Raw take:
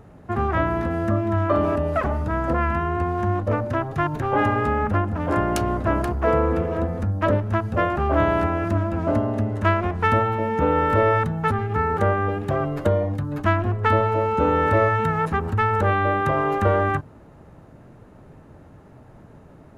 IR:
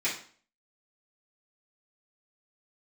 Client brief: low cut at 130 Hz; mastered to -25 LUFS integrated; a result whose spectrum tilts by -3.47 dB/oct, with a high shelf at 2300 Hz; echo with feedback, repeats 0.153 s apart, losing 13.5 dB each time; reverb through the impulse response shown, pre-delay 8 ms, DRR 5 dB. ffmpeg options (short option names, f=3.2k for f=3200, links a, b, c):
-filter_complex "[0:a]highpass=130,highshelf=f=2.3k:g=-5,aecho=1:1:153|306:0.211|0.0444,asplit=2[a][b];[1:a]atrim=start_sample=2205,adelay=8[c];[b][c]afir=irnorm=-1:irlink=0,volume=-14dB[d];[a][d]amix=inputs=2:normalize=0,volume=-2dB"